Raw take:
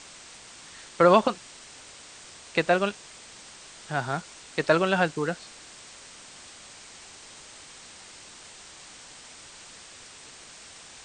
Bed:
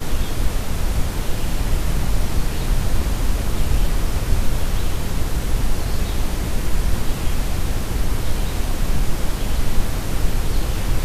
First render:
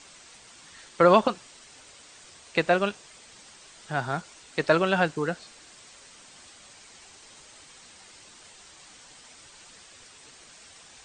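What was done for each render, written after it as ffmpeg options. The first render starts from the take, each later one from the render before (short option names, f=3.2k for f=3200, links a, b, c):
-af "afftdn=nr=6:nf=-48"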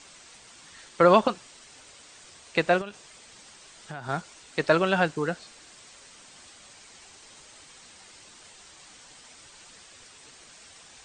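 -filter_complex "[0:a]asettb=1/sr,asplit=3[a][b][c];[a]atrim=end=2.814[d];[b]atrim=start=2.81:end=4.09,asetpts=PTS-STARTPTS,afade=t=in:d=0.004:c=qsin,afade=t=out:st=1.276:d=0.004:c=qsin,acompressor=threshold=-33dB:ratio=6:attack=3.2:release=140:knee=1:detection=peak[e];[c]atrim=start=4.086[f];[d][e]acrossfade=d=0.004:c1=hsin:c2=qsin[g];[g][f]acrossfade=d=0.004:c1=qsin:c2=hsin"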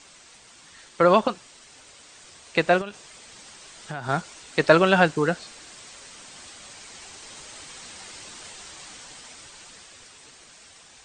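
-af "dynaudnorm=f=400:g=13:m=12dB"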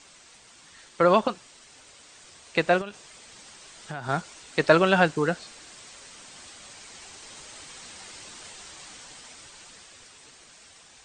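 -af "volume=-2dB"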